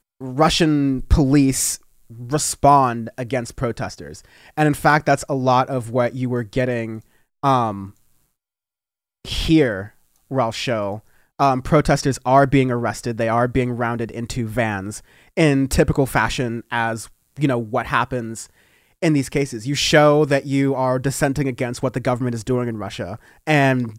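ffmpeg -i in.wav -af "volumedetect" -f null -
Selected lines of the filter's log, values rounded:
mean_volume: -19.9 dB
max_volume: -2.3 dB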